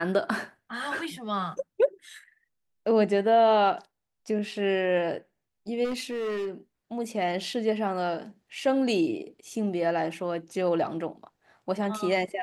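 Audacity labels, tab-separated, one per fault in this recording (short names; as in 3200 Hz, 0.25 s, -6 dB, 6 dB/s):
5.840000	6.490000	clipped -27.5 dBFS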